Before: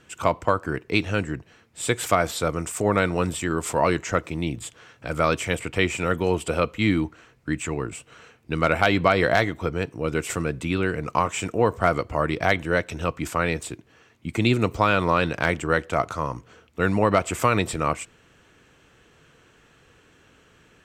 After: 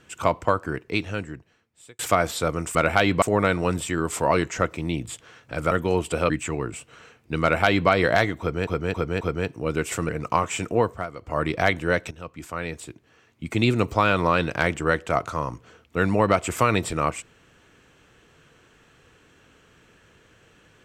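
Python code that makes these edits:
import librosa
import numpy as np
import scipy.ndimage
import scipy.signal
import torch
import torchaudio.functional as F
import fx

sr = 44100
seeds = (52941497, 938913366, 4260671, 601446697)

y = fx.edit(x, sr, fx.fade_out_span(start_s=0.5, length_s=1.49),
    fx.cut(start_s=5.24, length_s=0.83),
    fx.cut(start_s=6.66, length_s=0.83),
    fx.duplicate(start_s=8.61, length_s=0.47, to_s=2.75),
    fx.repeat(start_s=9.59, length_s=0.27, count=4),
    fx.cut(start_s=10.47, length_s=0.45),
    fx.fade_down_up(start_s=11.61, length_s=0.66, db=-14.5, fade_s=0.29),
    fx.fade_in_from(start_s=12.94, length_s=1.62, floor_db=-14.5), tone=tone)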